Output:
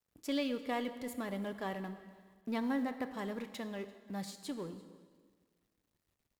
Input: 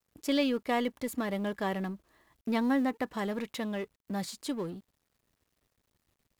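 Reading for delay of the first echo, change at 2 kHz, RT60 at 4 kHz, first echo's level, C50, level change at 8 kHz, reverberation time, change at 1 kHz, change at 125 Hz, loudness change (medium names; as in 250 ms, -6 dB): 341 ms, -6.5 dB, 1.4 s, -23.0 dB, 11.0 dB, -6.5 dB, 1.6 s, -6.5 dB, -6.5 dB, -6.5 dB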